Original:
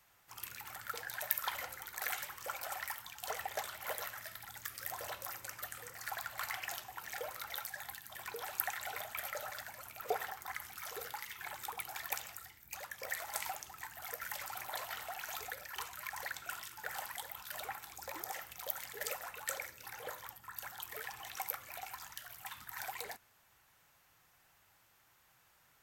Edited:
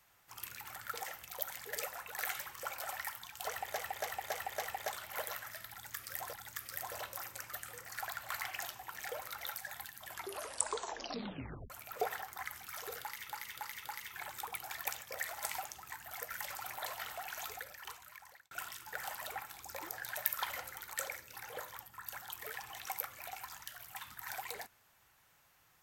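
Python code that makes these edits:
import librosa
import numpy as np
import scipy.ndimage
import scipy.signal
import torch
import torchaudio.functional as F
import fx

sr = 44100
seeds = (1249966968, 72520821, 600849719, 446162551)

y = fx.edit(x, sr, fx.swap(start_s=1.01, length_s=0.97, other_s=18.29, other_length_s=1.14),
    fx.repeat(start_s=3.33, length_s=0.28, count=5),
    fx.repeat(start_s=4.42, length_s=0.62, count=2),
    fx.tape_stop(start_s=8.13, length_s=1.66),
    fx.repeat(start_s=11.1, length_s=0.28, count=4),
    fx.cut(start_s=12.28, length_s=0.66),
    fx.fade_out_span(start_s=15.31, length_s=1.11),
    fx.cut(start_s=17.12, length_s=0.42), tone=tone)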